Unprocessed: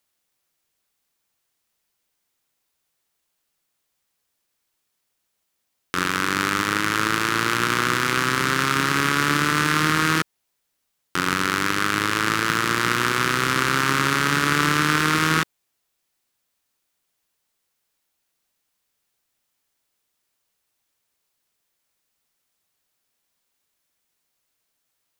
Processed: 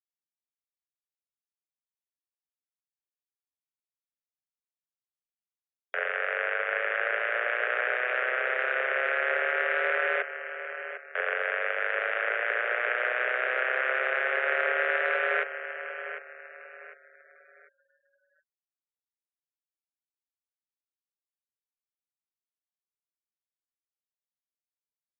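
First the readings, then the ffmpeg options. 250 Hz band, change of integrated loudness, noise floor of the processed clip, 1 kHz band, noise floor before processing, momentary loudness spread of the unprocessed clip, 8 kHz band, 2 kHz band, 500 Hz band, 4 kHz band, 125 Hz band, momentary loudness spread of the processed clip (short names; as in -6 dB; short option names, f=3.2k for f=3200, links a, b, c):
under -25 dB, -7.0 dB, under -85 dBFS, -10.5 dB, -76 dBFS, 4 LU, under -40 dB, -3.5 dB, 0.0 dB, -18.0 dB, under -40 dB, 11 LU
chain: -af "highpass=f=180:t=q:w=0.5412,highpass=f=180:t=q:w=1.307,lowpass=f=2.3k:t=q:w=0.5176,lowpass=f=2.3k:t=q:w=0.7071,lowpass=f=2.3k:t=q:w=1.932,afreqshift=250,aecho=1:1:751|1502|2253|3004:0.299|0.102|0.0345|0.0117,afftfilt=real='re*gte(hypot(re,im),0.00501)':imag='im*gte(hypot(re,im),0.00501)':win_size=1024:overlap=0.75,volume=-6dB"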